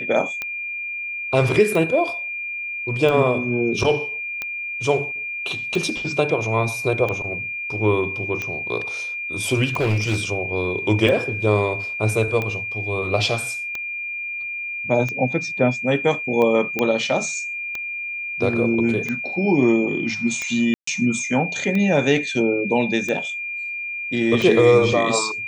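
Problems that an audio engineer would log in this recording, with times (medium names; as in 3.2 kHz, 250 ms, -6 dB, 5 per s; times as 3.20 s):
tick 45 rpm -13 dBFS
whine 2.4 kHz -26 dBFS
9.76–10.24 s: clipped -16 dBFS
16.79 s: pop -8 dBFS
20.74–20.87 s: dropout 134 ms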